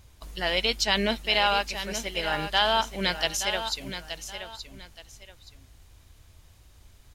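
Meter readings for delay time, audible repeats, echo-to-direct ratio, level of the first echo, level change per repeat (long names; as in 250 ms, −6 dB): 874 ms, 2, −9.5 dB, −10.0 dB, −11.0 dB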